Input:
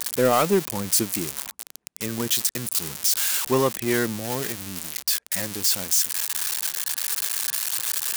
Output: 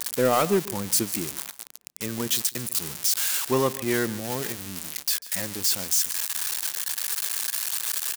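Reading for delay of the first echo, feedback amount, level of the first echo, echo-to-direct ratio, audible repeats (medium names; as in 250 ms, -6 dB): 144 ms, no regular repeats, -17.5 dB, -17.5 dB, 1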